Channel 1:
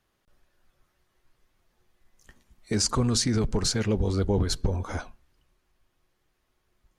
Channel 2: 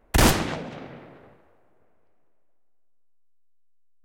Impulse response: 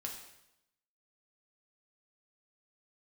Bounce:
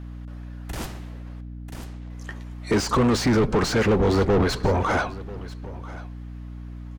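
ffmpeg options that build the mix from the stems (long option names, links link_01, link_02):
-filter_complex "[0:a]asplit=2[link_01][link_02];[link_02]highpass=frequency=720:poles=1,volume=28dB,asoftclip=type=tanh:threshold=-13.5dB[link_03];[link_01][link_03]amix=inputs=2:normalize=0,lowpass=frequency=1300:poles=1,volume=-6dB,volume=2dB,asplit=3[link_04][link_05][link_06];[link_04]atrim=end=1.41,asetpts=PTS-STARTPTS,afade=type=out:start_time=1.406:duration=0.004:curve=hsin[link_07];[link_05]atrim=start=1.41:end=2.1,asetpts=PTS-STARTPTS,volume=0[link_08];[link_06]atrim=start=2.1,asetpts=PTS-STARTPTS,afade=type=in:duration=0.004:curve=hsin[link_09];[link_07][link_08][link_09]concat=n=3:v=0:a=1,asplit=3[link_10][link_11][link_12];[link_11]volume=-18.5dB[link_13];[1:a]adelay=550,volume=-17.5dB,asplit=3[link_14][link_15][link_16];[link_15]volume=-6.5dB[link_17];[link_16]volume=-7dB[link_18];[link_12]apad=whole_len=202481[link_19];[link_14][link_19]sidechaingate=range=-33dB:threshold=-55dB:ratio=16:detection=peak[link_20];[2:a]atrim=start_sample=2205[link_21];[link_17][link_21]afir=irnorm=-1:irlink=0[link_22];[link_13][link_18]amix=inputs=2:normalize=0,aecho=0:1:990:1[link_23];[link_10][link_20][link_22][link_23]amix=inputs=4:normalize=0,aeval=exprs='val(0)+0.0178*(sin(2*PI*60*n/s)+sin(2*PI*2*60*n/s)/2+sin(2*PI*3*60*n/s)/3+sin(2*PI*4*60*n/s)/4+sin(2*PI*5*60*n/s)/5)':channel_layout=same"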